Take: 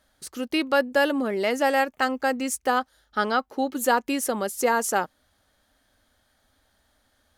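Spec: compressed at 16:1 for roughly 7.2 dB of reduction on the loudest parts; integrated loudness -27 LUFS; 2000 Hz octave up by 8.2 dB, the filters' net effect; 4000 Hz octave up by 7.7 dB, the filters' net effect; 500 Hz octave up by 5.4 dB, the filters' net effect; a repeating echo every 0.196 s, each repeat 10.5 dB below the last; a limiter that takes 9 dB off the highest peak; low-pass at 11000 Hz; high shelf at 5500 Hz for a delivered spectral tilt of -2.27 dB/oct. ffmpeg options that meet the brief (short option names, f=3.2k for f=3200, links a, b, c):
-af "lowpass=11k,equalizer=f=500:t=o:g=5.5,equalizer=f=2k:t=o:g=9,equalizer=f=4k:t=o:g=8,highshelf=f=5.5k:g=-4,acompressor=threshold=-17dB:ratio=16,alimiter=limit=-16.5dB:level=0:latency=1,aecho=1:1:196|392|588:0.299|0.0896|0.0269,volume=-0.5dB"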